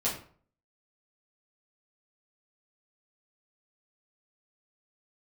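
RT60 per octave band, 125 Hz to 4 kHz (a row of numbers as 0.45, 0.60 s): 0.60, 0.50, 0.50, 0.50, 0.40, 0.30 s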